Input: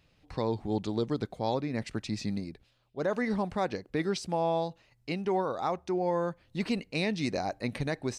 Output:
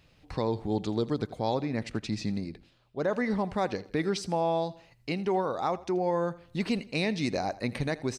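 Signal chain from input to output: 1.65–3.53 high shelf 8600 Hz -7 dB; in parallel at -3 dB: compressor, threshold -40 dBFS, peak gain reduction 14.5 dB; on the sum: feedback echo 82 ms, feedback 38%, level -19 dB

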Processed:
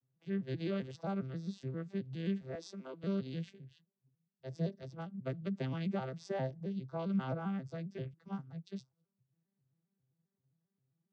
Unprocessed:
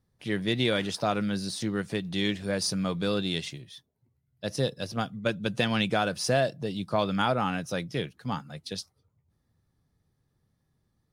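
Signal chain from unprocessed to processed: arpeggiated vocoder major triad, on C3, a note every 0.133 s; 2.55–3.04 HPF 280 Hz 24 dB/oct; gain -8.5 dB

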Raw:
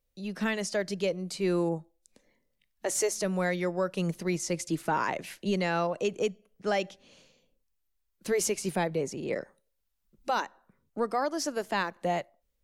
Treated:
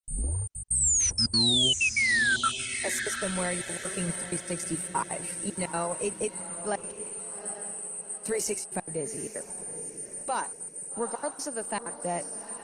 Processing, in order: tape start at the beginning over 2.14 s; bell 930 Hz +4.5 dB 0.26 oct; notch 3400 Hz, Q 6; de-hum 374.7 Hz, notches 33; whine 9000 Hz -30 dBFS; painted sound fall, 0.67–2.49, 1300–9200 Hz -21 dBFS; resonator 58 Hz, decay 1.6 s, harmonics all, mix 30%; step gate ".xxxxx.x" 191 bpm -60 dB; diffused feedback echo 0.818 s, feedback 44%, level -10.5 dB; Opus 16 kbps 48000 Hz

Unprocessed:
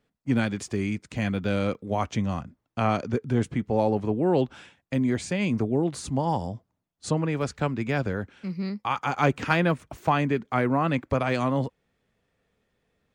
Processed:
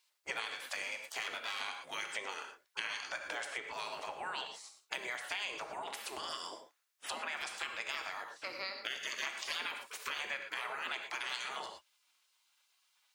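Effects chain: 0.82–1.61 half-wave gain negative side -7 dB; spectral gate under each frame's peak -20 dB weak; non-linear reverb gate 0.14 s flat, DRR 5.5 dB; compressor 5:1, threshold -47 dBFS, peak gain reduction 14.5 dB; HPF 740 Hz 6 dB/oct; gain +11 dB

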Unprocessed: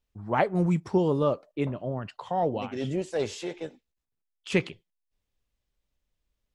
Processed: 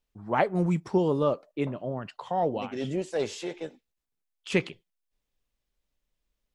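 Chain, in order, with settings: bell 82 Hz -8.5 dB 1 oct

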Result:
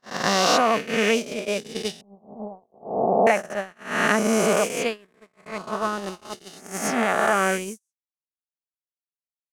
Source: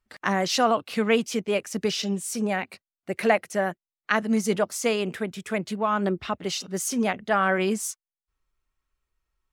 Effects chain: spectral swells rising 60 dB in 2.95 s; gate -19 dBFS, range -52 dB; 2.01–3.27 steep low-pass 1100 Hz 72 dB/oct; gain -2 dB

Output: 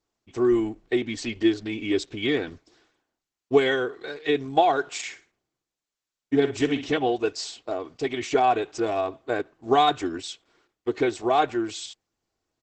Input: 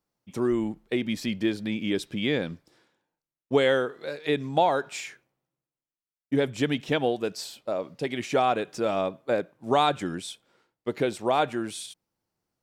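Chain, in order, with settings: comb 2.7 ms, depth 90%; 4.94–6.92 flutter echo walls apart 9.8 m, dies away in 0.31 s; Opus 10 kbps 48000 Hz

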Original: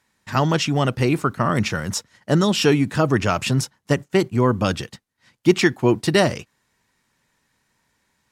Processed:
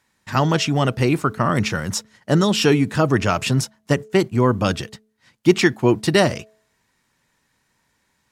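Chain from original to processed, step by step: de-hum 216.5 Hz, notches 3; gain +1 dB

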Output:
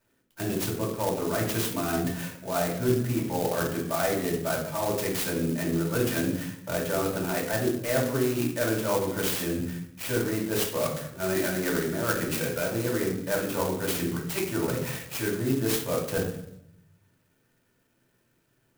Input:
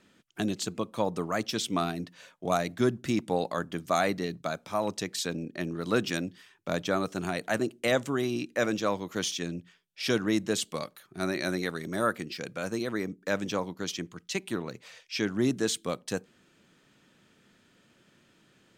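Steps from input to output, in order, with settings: gate with hold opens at -50 dBFS; notches 50/100/150 Hz; reverse; compressor 6:1, threshold -39 dBFS, peak gain reduction 17.5 dB; reverse; reverb RT60 0.75 s, pre-delay 3 ms, DRR -5 dB; clock jitter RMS 0.069 ms; gain +6 dB

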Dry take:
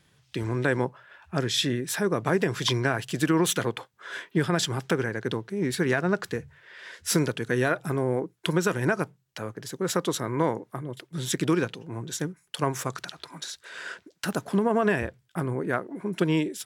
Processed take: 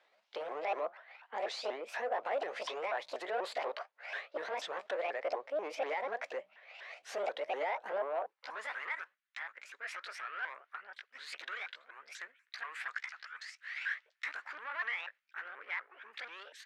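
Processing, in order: repeated pitch sweeps +8 st, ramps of 0.243 s; limiter -19 dBFS, peak gain reduction 10.5 dB; soft clip -26 dBFS, distortion -13 dB; BPF 350–3100 Hz; high-pass sweep 640 Hz -> 1600 Hz, 7.94–9.03; gain -3.5 dB

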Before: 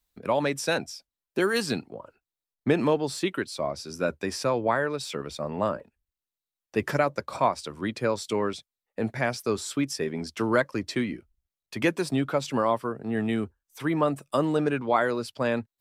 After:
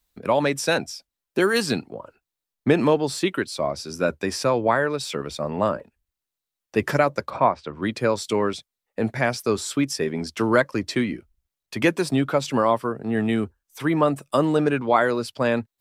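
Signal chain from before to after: 7.3–7.82 LPF 2300 Hz 12 dB/oct; gain +4.5 dB

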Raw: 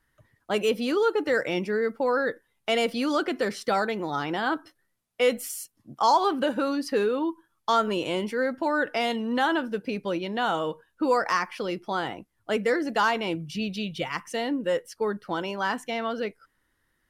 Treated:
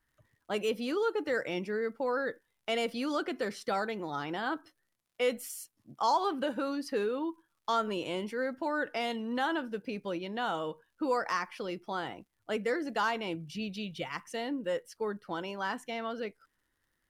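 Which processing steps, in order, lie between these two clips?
crackle 98/s -56 dBFS; gain -7 dB

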